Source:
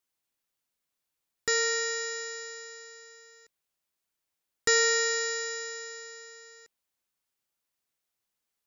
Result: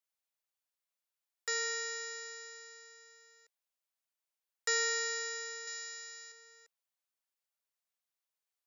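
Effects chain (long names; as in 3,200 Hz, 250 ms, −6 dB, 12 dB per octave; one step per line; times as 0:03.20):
Butterworth high-pass 470 Hz
0:05.67–0:06.32: tilt shelving filter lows −6.5 dB
level −7.5 dB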